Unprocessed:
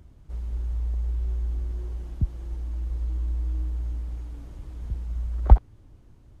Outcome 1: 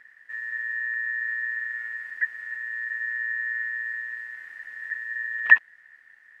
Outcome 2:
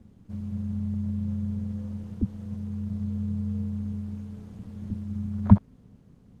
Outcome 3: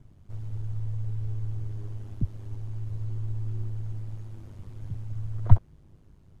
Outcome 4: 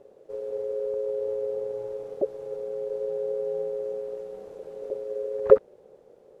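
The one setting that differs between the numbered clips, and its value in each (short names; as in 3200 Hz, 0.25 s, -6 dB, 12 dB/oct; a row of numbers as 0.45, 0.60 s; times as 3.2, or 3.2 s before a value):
ring modulator, frequency: 1800, 150, 50, 480 Hz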